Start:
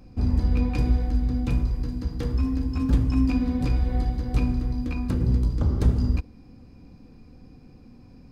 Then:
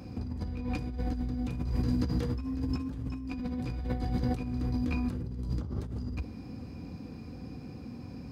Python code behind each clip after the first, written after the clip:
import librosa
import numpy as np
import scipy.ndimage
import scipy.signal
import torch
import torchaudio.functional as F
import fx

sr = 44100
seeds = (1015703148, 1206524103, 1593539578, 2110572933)

y = scipy.signal.sosfilt(scipy.signal.butter(4, 63.0, 'highpass', fs=sr, output='sos'), x)
y = fx.over_compress(y, sr, threshold_db=-33.0, ratio=-1.0)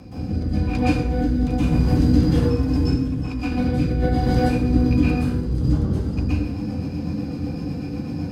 y = fx.rotary_switch(x, sr, hz=1.1, then_hz=8.0, switch_at_s=5.29)
y = fx.rev_plate(y, sr, seeds[0], rt60_s=0.68, hf_ratio=0.8, predelay_ms=110, drr_db=-10.0)
y = F.gain(torch.from_numpy(y), 6.0).numpy()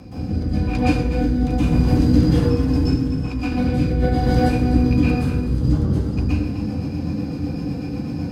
y = x + 10.0 ** (-12.0 / 20.0) * np.pad(x, (int(251 * sr / 1000.0), 0))[:len(x)]
y = F.gain(torch.from_numpy(y), 1.5).numpy()